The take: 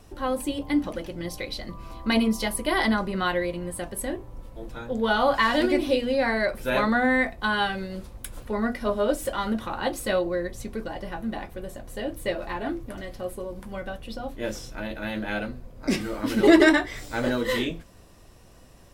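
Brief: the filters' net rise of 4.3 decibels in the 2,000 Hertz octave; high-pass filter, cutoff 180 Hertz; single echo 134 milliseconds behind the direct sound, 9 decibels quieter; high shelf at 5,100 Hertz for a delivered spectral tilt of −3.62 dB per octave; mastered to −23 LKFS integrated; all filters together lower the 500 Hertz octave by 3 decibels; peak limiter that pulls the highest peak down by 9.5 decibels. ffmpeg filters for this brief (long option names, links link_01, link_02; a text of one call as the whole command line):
ffmpeg -i in.wav -af "highpass=180,equalizer=frequency=500:width_type=o:gain=-4,equalizer=frequency=2000:width_type=o:gain=4.5,highshelf=frequency=5100:gain=8.5,alimiter=limit=-13.5dB:level=0:latency=1,aecho=1:1:134:0.355,volume=3.5dB" out.wav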